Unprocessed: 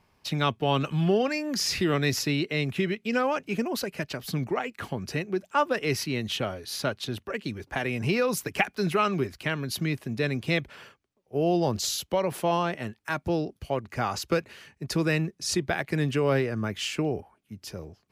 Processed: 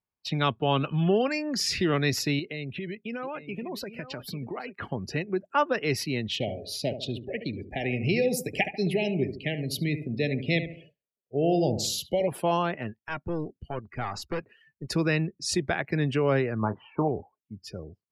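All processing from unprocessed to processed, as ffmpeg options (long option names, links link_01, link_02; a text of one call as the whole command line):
ffmpeg -i in.wav -filter_complex "[0:a]asettb=1/sr,asplit=3[link_01][link_02][link_03];[link_01]atrim=end=2.394[link_04];[link_02]atrim=start=2.39:end=4.8,asetpts=PTS-STARTPTS,afade=type=in:duration=0.004:curve=qsin,afade=type=out:start_time=2.406:duration=0.004:curve=qsin,acompressor=threshold=-32dB:ratio=4:attack=3.2:release=140:knee=1:detection=peak,aecho=1:1:839:0.251,atrim=end_sample=106281[link_05];[link_03]atrim=start=4.796[link_06];[link_04][link_05]acrossfade=duration=0.004:curve1=hsin:curve2=qsin[link_07];[link_07][link_06]acrossfade=duration=0.004:curve1=qsin:curve2=hsin,asettb=1/sr,asplit=3[link_08][link_09][link_10];[link_08]atrim=end=6.334[link_11];[link_09]atrim=start=6.33:end=12.28,asetpts=PTS-STARTPTS,afade=type=in:duration=0.004:curve=qsin,afade=type=out:start_time=5.946:duration=0.004:curve=qsin,asuperstop=centerf=1200:order=8:qfactor=1.1,asplit=2[link_12][link_13];[link_13]adelay=72,lowpass=frequency=2300:poles=1,volume=-9dB,asplit=2[link_14][link_15];[link_15]adelay=72,lowpass=frequency=2300:poles=1,volume=0.44,asplit=2[link_16][link_17];[link_17]adelay=72,lowpass=frequency=2300:poles=1,volume=0.44,asplit=2[link_18][link_19];[link_19]adelay=72,lowpass=frequency=2300:poles=1,volume=0.44,asplit=2[link_20][link_21];[link_21]adelay=72,lowpass=frequency=2300:poles=1,volume=0.44[link_22];[link_12][link_14][link_16][link_18][link_20][link_22]amix=inputs=6:normalize=0,atrim=end_sample=262395[link_23];[link_10]atrim=start=12.276[link_24];[link_11][link_23]acrossfade=duration=0.004:curve1=hsin:curve2=qsin[link_25];[link_25][link_24]acrossfade=duration=0.004:curve1=qsin:curve2=hsin,asettb=1/sr,asplit=3[link_26][link_27][link_28];[link_26]atrim=end=12.994[link_29];[link_27]atrim=start=12.99:end=14.9,asetpts=PTS-STARTPTS,afade=type=in:duration=0.004:curve=qsin,afade=type=out:start_time=1.906:duration=0.004:curve=qsin,bandreject=frequency=560:width=8.1,aeval=exprs='(tanh(17.8*val(0)+0.6)-tanh(0.6))/17.8':channel_layout=same[link_30];[link_28]atrim=start=14.896[link_31];[link_29][link_30]acrossfade=duration=0.004:curve1=hsin:curve2=qsin[link_32];[link_32][link_31]acrossfade=duration=0.004:curve1=qsin:curve2=hsin,asettb=1/sr,asplit=3[link_33][link_34][link_35];[link_33]atrim=end=16.594[link_36];[link_34]atrim=start=16.59:end=17.08,asetpts=PTS-STARTPTS,afade=type=in:duration=0.004:curve=qsin,afade=type=out:start_time=0.486:duration=0.004:curve=qsin,lowpass=frequency=950:width_type=q:width=5.1,asplit=2[link_37][link_38];[link_38]adelay=27,volume=-11dB[link_39];[link_37][link_39]amix=inputs=2:normalize=0,atrim=end_sample=21609[link_40];[link_35]atrim=start=17.076[link_41];[link_36][link_40]acrossfade=duration=0.004:curve1=hsin:curve2=qsin[link_42];[link_42][link_41]acrossfade=duration=0.004:curve1=qsin:curve2=hsin,bandreject=frequency=6200:width=22,afftdn=noise_reduction=29:noise_floor=-44" out.wav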